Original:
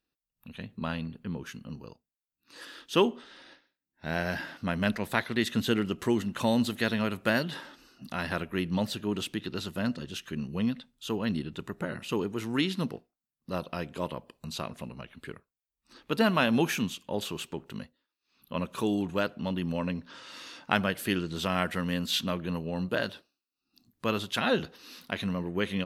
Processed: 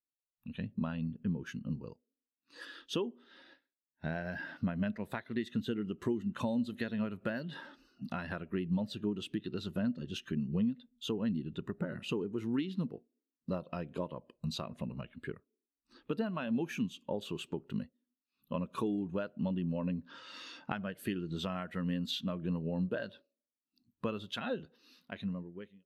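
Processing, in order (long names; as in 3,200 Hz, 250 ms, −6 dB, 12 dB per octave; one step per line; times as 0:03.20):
fade-out on the ending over 1.90 s
downward compressor 10 to 1, threshold −36 dBFS, peak gain reduction 18 dB
on a send at −20 dB: Chebyshev band-pass filter 230–700 Hz, order 5 + convolution reverb RT60 0.85 s, pre-delay 6 ms
on the sum: every bin expanded away from the loudest bin 1.5 to 1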